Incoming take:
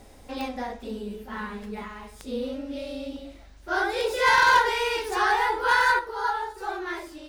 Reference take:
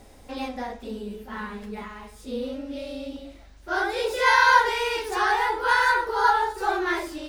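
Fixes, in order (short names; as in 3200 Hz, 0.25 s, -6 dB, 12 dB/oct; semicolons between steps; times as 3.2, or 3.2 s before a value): clip repair -13 dBFS; de-click; gain correction +7 dB, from 5.99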